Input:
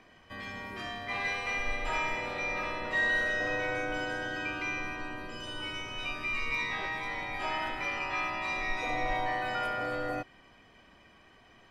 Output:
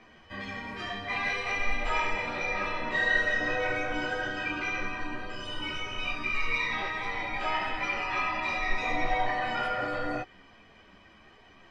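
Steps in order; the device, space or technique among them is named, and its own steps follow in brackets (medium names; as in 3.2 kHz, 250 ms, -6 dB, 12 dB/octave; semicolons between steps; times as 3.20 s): string-machine ensemble chorus (three-phase chorus; low-pass 6.6 kHz 12 dB/octave); trim +6 dB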